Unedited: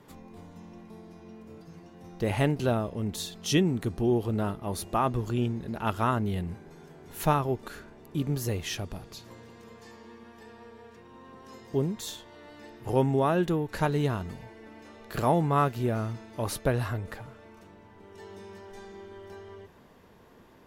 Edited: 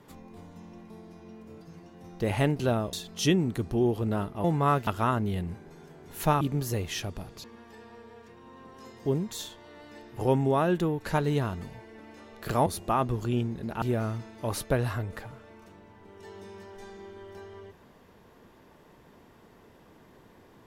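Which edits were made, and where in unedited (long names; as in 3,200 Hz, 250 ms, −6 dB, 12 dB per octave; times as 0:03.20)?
0:02.93–0:03.20: remove
0:04.71–0:05.87: swap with 0:15.34–0:15.77
0:07.41–0:08.16: remove
0:09.19–0:10.12: remove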